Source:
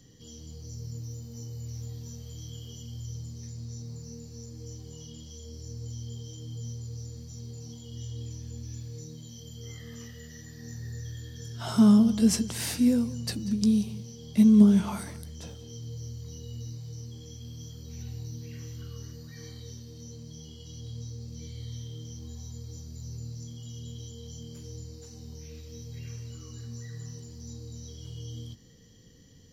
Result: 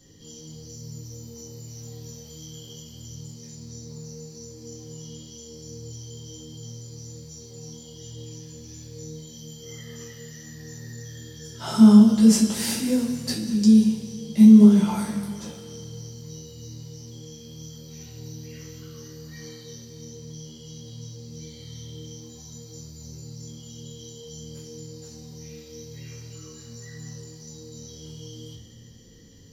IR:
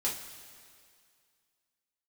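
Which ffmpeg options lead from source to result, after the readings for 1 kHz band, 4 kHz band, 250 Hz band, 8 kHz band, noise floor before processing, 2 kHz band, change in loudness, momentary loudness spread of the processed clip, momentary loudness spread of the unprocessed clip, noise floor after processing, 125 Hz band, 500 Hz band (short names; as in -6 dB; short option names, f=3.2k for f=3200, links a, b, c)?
+6.0 dB, +5.0 dB, +6.5 dB, +5.5 dB, -46 dBFS, n/a, +12.0 dB, 19 LU, 20 LU, -45 dBFS, +2.5 dB, +6.0 dB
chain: -filter_complex "[1:a]atrim=start_sample=2205[a];[0:a][a]afir=irnorm=-1:irlink=0"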